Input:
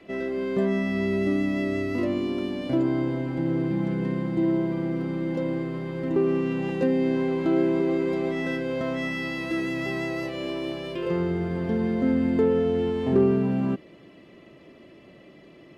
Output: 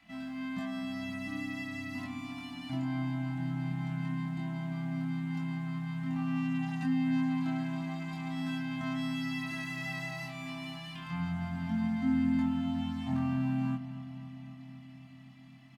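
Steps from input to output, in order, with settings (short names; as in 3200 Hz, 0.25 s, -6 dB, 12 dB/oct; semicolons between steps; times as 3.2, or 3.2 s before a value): elliptic band-stop 270–730 Hz, stop band 60 dB; high shelf 4300 Hz +6.5 dB; notches 50/100/150/200/250/300/350 Hz; doubler 23 ms -3 dB; on a send: darkening echo 0.261 s, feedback 77%, level -12.5 dB; on the sum: gain -8.5 dB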